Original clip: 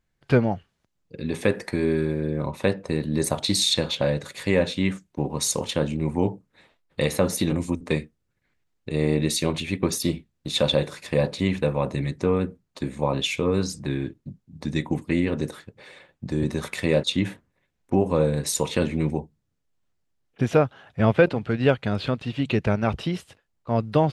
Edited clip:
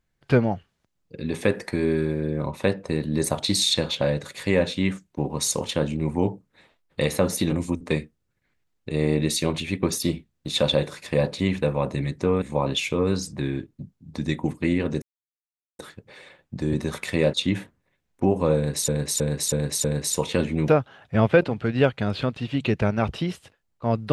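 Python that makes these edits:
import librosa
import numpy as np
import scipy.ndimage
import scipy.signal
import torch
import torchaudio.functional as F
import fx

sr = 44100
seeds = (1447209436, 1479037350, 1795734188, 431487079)

y = fx.edit(x, sr, fx.cut(start_s=12.42, length_s=0.47),
    fx.insert_silence(at_s=15.49, length_s=0.77),
    fx.repeat(start_s=18.26, length_s=0.32, count=5),
    fx.cut(start_s=19.1, length_s=1.43), tone=tone)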